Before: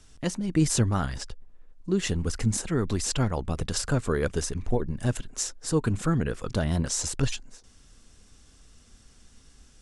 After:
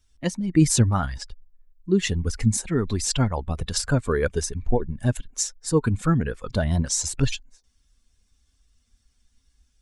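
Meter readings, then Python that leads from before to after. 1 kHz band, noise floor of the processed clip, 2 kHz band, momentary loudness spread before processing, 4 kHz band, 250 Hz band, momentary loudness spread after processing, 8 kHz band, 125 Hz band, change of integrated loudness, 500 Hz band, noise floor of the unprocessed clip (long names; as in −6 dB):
+3.5 dB, −67 dBFS, +3.0 dB, 6 LU, +3.5 dB, +3.5 dB, 8 LU, +3.5 dB, +4.0 dB, +4.0 dB, +3.5 dB, −56 dBFS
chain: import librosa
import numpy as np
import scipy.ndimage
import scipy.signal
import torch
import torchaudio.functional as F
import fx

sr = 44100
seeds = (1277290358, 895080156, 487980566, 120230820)

y = fx.bin_expand(x, sr, power=1.5)
y = F.gain(torch.from_numpy(y), 6.5).numpy()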